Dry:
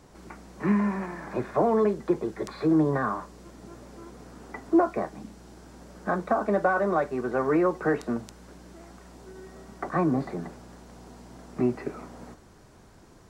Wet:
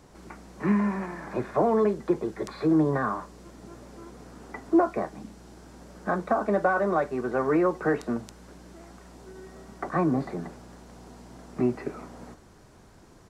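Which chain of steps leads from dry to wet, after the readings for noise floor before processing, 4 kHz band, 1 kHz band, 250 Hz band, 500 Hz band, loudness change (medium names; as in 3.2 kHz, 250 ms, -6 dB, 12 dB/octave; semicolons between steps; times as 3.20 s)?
-53 dBFS, no reading, 0.0 dB, 0.0 dB, 0.0 dB, 0.0 dB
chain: resampled via 32 kHz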